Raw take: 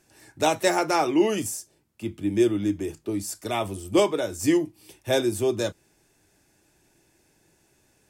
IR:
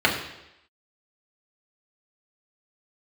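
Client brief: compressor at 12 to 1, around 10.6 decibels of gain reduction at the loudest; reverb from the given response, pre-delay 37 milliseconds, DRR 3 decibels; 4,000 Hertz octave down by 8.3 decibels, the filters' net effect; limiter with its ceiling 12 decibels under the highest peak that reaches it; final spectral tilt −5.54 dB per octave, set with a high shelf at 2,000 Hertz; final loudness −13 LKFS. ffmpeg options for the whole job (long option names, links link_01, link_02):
-filter_complex "[0:a]highshelf=frequency=2000:gain=-3.5,equalizer=frequency=4000:width_type=o:gain=-7.5,acompressor=threshold=-26dB:ratio=12,alimiter=level_in=5dB:limit=-24dB:level=0:latency=1,volume=-5dB,asplit=2[link_01][link_02];[1:a]atrim=start_sample=2205,adelay=37[link_03];[link_02][link_03]afir=irnorm=-1:irlink=0,volume=-21.5dB[link_04];[link_01][link_04]amix=inputs=2:normalize=0,volume=23.5dB"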